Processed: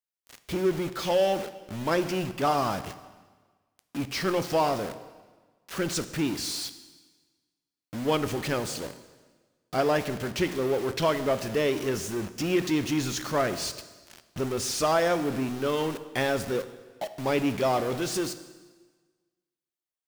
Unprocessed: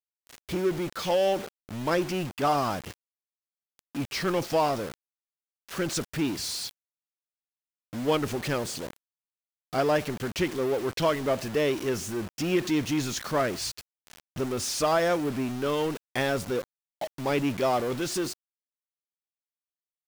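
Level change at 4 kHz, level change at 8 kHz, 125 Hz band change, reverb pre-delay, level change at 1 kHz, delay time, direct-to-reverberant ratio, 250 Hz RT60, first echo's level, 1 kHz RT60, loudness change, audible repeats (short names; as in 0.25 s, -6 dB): +0.5 dB, +0.5 dB, 0.0 dB, 4 ms, +0.5 dB, none, 11.0 dB, 1.4 s, none, 1.4 s, 0.0 dB, none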